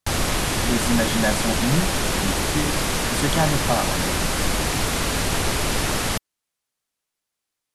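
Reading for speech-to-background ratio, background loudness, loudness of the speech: -3.5 dB, -22.5 LUFS, -26.0 LUFS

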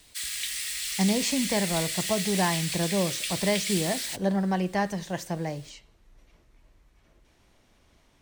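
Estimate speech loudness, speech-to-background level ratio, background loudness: -28.5 LUFS, 1.0 dB, -29.5 LUFS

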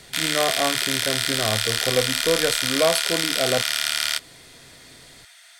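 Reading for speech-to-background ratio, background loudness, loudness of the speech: -3.5 dB, -22.0 LUFS, -25.5 LUFS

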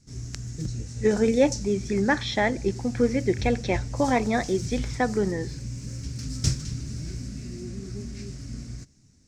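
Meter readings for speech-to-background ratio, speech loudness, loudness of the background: 9.0 dB, -25.5 LUFS, -34.5 LUFS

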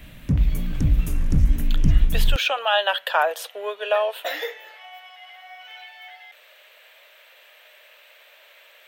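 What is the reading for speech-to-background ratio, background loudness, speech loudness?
-0.5 dB, -23.5 LUFS, -24.0 LUFS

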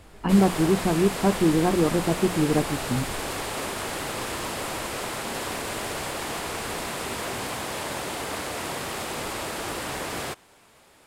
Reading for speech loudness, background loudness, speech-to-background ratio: -23.5 LUFS, -30.5 LUFS, 7.0 dB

